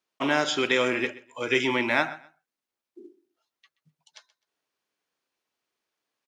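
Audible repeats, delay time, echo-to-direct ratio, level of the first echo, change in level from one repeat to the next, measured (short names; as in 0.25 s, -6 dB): 2, 0.128 s, -19.0 dB, -19.0 dB, -13.0 dB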